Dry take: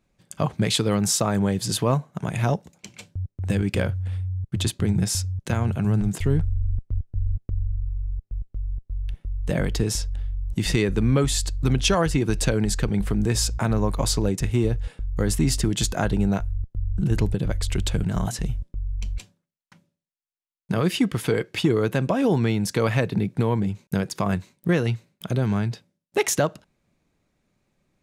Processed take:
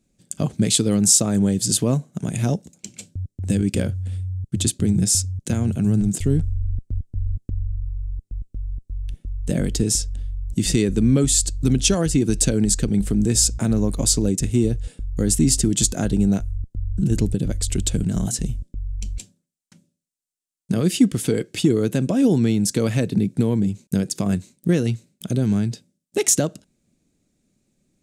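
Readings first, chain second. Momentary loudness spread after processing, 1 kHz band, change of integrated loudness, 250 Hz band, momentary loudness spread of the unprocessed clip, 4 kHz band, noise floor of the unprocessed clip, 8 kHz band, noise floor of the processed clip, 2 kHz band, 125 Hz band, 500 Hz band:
14 LU, -7.5 dB, +3.5 dB, +5.0 dB, 10 LU, +2.0 dB, -79 dBFS, +9.0 dB, -75 dBFS, -5.0 dB, +1.5 dB, 0.0 dB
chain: graphic EQ 250/1000/2000/8000 Hz +7/-10/-4/+11 dB

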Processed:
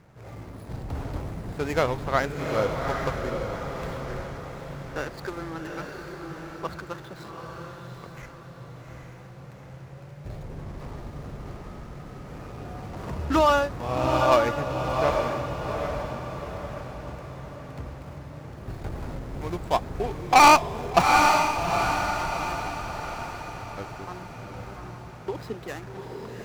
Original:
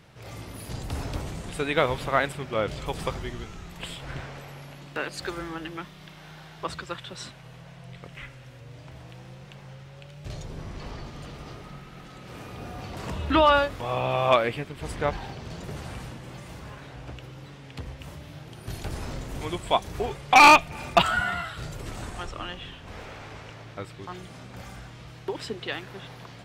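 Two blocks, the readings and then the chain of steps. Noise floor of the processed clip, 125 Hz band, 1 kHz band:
-44 dBFS, +2.0 dB, +1.5 dB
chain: median filter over 15 samples; diffused feedback echo 0.796 s, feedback 45%, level -3.5 dB

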